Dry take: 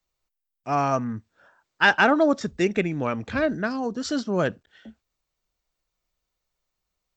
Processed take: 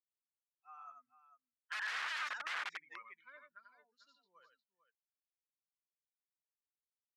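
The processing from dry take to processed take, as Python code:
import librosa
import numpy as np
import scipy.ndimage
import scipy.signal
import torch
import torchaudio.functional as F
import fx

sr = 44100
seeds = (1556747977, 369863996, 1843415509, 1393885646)

y = fx.bin_expand(x, sr, power=2.0)
y = fx.doppler_pass(y, sr, speed_mps=20, closest_m=2.4, pass_at_s=2.32)
y = fx.echo_multitap(y, sr, ms=(90, 447), db=(-6.0, -13.0))
y = (np.mod(10.0 ** (30.5 / 20.0) * y + 1.0, 2.0) - 1.0) / 10.0 ** (30.5 / 20.0)
y = fx.ladder_bandpass(y, sr, hz=1800.0, resonance_pct=40)
y = F.gain(torch.from_numpy(y), 9.0).numpy()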